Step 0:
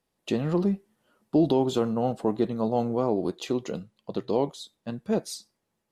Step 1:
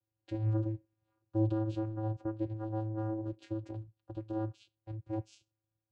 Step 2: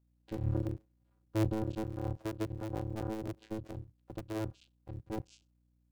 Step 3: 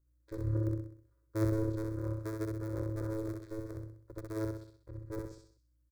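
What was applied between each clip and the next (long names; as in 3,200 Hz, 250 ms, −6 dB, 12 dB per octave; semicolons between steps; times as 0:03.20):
channel vocoder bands 8, square 109 Hz; level −8 dB
sub-harmonics by changed cycles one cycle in 3, muted; mains hum 60 Hz, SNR 34 dB
phaser with its sweep stopped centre 780 Hz, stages 6; on a send: repeating echo 64 ms, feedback 46%, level −3.5 dB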